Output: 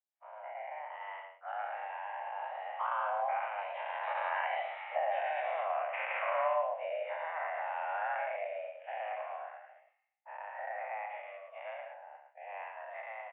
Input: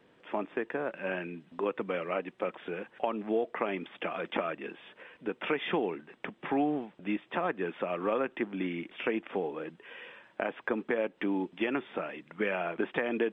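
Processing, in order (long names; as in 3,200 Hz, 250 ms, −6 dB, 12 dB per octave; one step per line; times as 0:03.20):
every bin's largest magnitude spread in time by 240 ms
source passing by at 0:05.20, 14 m/s, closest 8.5 metres
downward expander −42 dBFS
in parallel at −0.5 dB: downward compressor, threshold −40 dBFS, peak gain reduction 18 dB
on the sum: brickwall limiter −22.5 dBFS, peak gain reduction 11.5 dB
reversed playback
upward compression, threshold −50 dBFS
reversed playback
rotating-speaker cabinet horn 0.6 Hz
single-tap delay 111 ms −6 dB
single-sideband voice off tune +310 Hz 250–2,200 Hz
one half of a high-frequency compander decoder only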